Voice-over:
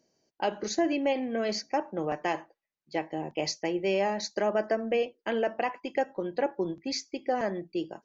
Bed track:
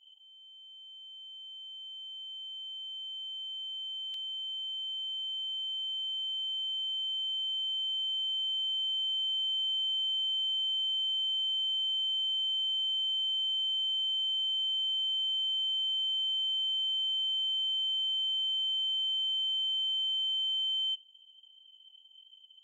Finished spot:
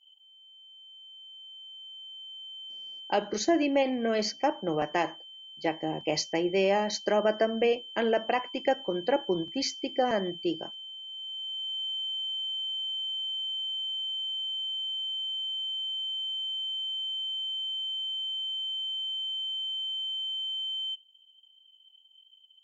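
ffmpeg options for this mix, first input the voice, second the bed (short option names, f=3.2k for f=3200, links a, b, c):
-filter_complex "[0:a]adelay=2700,volume=2dB[a];[1:a]volume=8.5dB,afade=t=out:st=2.89:d=0.41:silence=0.298538,afade=t=in:st=11.04:d=0.79:silence=0.334965[b];[a][b]amix=inputs=2:normalize=0"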